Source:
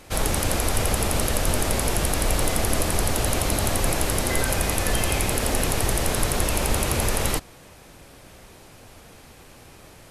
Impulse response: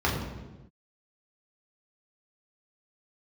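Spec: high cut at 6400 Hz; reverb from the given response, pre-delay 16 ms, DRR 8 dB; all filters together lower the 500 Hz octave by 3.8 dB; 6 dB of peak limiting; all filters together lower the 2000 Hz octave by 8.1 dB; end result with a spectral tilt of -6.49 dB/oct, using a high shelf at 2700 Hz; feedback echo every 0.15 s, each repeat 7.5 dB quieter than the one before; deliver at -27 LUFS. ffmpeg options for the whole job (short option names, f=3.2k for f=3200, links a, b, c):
-filter_complex "[0:a]lowpass=6.4k,equalizer=f=500:t=o:g=-4,equalizer=f=2k:t=o:g=-6.5,highshelf=f=2.7k:g=-8.5,alimiter=limit=-17dB:level=0:latency=1,aecho=1:1:150|300|450|600|750:0.422|0.177|0.0744|0.0312|0.0131,asplit=2[a][b];[1:a]atrim=start_sample=2205,adelay=16[c];[b][c]afir=irnorm=-1:irlink=0,volume=-21.5dB[d];[a][d]amix=inputs=2:normalize=0,volume=-3dB"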